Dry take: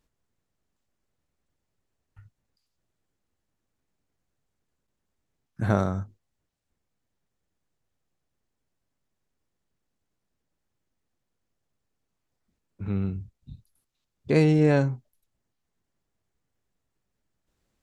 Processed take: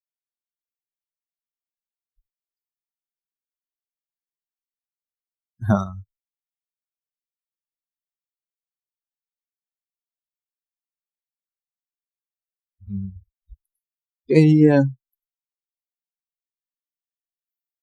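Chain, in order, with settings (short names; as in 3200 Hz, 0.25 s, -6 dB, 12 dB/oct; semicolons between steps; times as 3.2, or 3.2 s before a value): per-bin expansion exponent 3; AGC gain up to 11 dB; dynamic EQ 290 Hz, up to +6 dB, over -30 dBFS, Q 1.1; gain -2.5 dB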